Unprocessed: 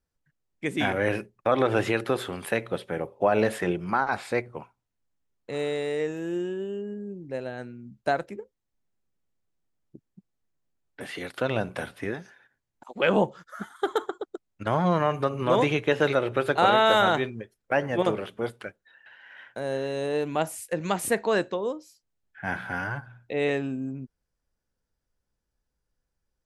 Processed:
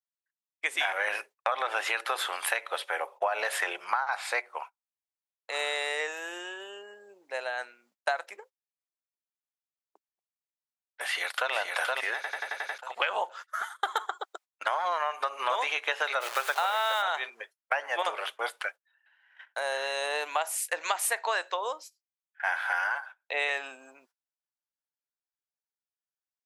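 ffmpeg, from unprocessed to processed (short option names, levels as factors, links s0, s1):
-filter_complex "[0:a]asplit=2[s0][s1];[s1]afade=t=in:st=11.05:d=0.01,afade=t=out:st=11.53:d=0.01,aecho=0:1:470|940|1410|1880|2350:0.707946|0.247781|0.0867234|0.0303532|0.0106236[s2];[s0][s2]amix=inputs=2:normalize=0,asplit=3[s3][s4][s5];[s3]afade=t=out:st=16.2:d=0.02[s6];[s4]acrusher=bits=7:dc=4:mix=0:aa=0.000001,afade=t=in:st=16.2:d=0.02,afade=t=out:st=17.01:d=0.02[s7];[s5]afade=t=in:st=17.01:d=0.02[s8];[s6][s7][s8]amix=inputs=3:normalize=0,asplit=8[s9][s10][s11][s12][s13][s14][s15][s16];[s9]atrim=end=12.242[s17];[s10]atrim=start=12.148:end=12.242[s18];[s11]atrim=start=12.148:end=12.242[s19];[s12]atrim=start=12.148:end=12.242[s20];[s13]atrim=start=12.148:end=12.242[s21];[s14]atrim=start=12.148:end=12.242[s22];[s15]atrim=start=12.148:end=12.242[s23];[s16]atrim=start=12.778[s24];[s17][s18]acrossfade=d=0.004:c1=hsin:c2=hsin[s25];[s25][s19]acrossfade=d=0.004:c1=hsin:c2=hsin[s26];[s26][s20]acrossfade=d=0.004:c1=hsin:c2=hsin[s27];[s27][s21]acrossfade=d=0.004:c1=hsin:c2=hsin[s28];[s28][s22]acrossfade=d=0.004:c1=hsin:c2=hsin[s29];[s29][s23]acrossfade=d=0.004:c1=hsin:c2=hsin[s30];[s30][s24]acrossfade=d=0.004:c1=hsin:c2=hsin,agate=range=0.0708:threshold=0.00631:ratio=16:detection=peak,highpass=f=750:w=0.5412,highpass=f=750:w=1.3066,acompressor=threshold=0.0224:ratio=12,volume=2.66"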